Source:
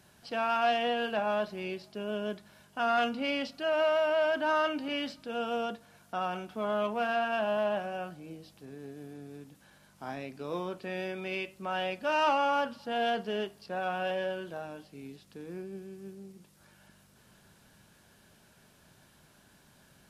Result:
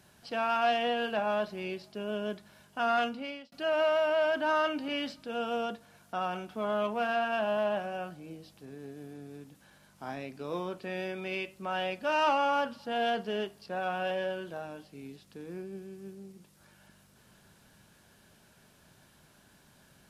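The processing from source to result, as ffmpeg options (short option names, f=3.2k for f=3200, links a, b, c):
-filter_complex "[0:a]asplit=2[a][b];[a]atrim=end=3.52,asetpts=PTS-STARTPTS,afade=t=out:st=2.94:d=0.58[c];[b]atrim=start=3.52,asetpts=PTS-STARTPTS,afade=t=in:d=0.004:c=hsin[d];[c][d]concat=n=2:v=0:a=1"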